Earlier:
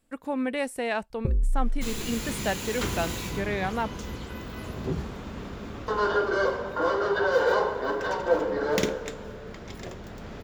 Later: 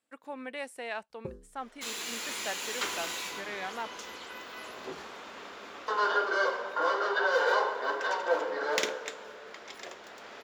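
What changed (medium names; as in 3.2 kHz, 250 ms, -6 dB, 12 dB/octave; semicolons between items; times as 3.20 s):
speech -7.5 dB; second sound: add peaking EQ 130 Hz -14 dB 1.9 oct; master: add frequency weighting A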